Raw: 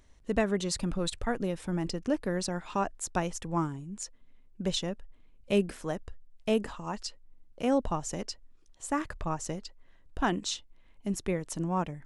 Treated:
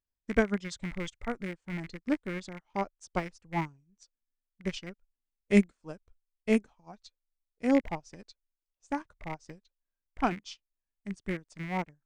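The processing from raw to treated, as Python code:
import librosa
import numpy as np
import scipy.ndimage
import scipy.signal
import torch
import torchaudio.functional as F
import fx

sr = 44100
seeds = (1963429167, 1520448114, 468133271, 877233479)

y = fx.rattle_buzz(x, sr, strikes_db=-35.0, level_db=-24.0)
y = fx.formant_shift(y, sr, semitones=-3)
y = fx.upward_expand(y, sr, threshold_db=-47.0, expansion=2.5)
y = F.gain(torch.from_numpy(y), 5.5).numpy()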